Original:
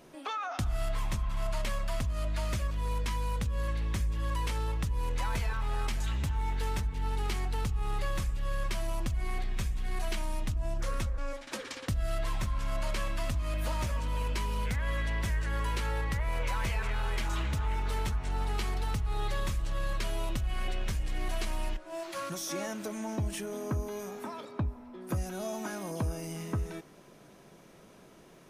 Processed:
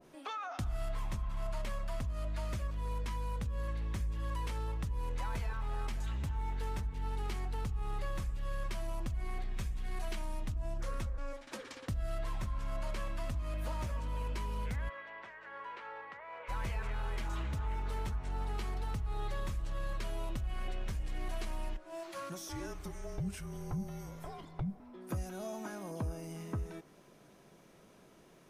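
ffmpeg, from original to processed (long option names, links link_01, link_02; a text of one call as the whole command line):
ffmpeg -i in.wav -filter_complex "[0:a]asplit=3[link_01][link_02][link_03];[link_01]afade=type=out:start_time=14.88:duration=0.02[link_04];[link_02]highpass=650,lowpass=2300,afade=type=in:start_time=14.88:duration=0.02,afade=type=out:start_time=16.48:duration=0.02[link_05];[link_03]afade=type=in:start_time=16.48:duration=0.02[link_06];[link_04][link_05][link_06]amix=inputs=3:normalize=0,asettb=1/sr,asplit=3[link_07][link_08][link_09];[link_07]atrim=end=22.494[link_10];[link_08]atrim=start=22.49:end=24.8,asetpts=PTS-STARTPTS,afade=type=in:duration=0.004:curve=qsin,afade=type=out:start_time=2.306:duration=0.004:curve=qsin,afreqshift=-250[link_11];[link_09]atrim=start=24.796[link_12];[link_10][link_11]acrossfade=duration=0.004:curve1=hsin:curve2=qsin[link_13];[link_13][link_12]acrossfade=duration=0.004:curve1=qsin:curve2=hsin,adynamicequalizer=threshold=0.00316:dfrequency=1700:dqfactor=0.7:tfrequency=1700:tqfactor=0.7:attack=5:release=100:ratio=0.375:range=2.5:mode=cutabove:tftype=highshelf,volume=-5dB" out.wav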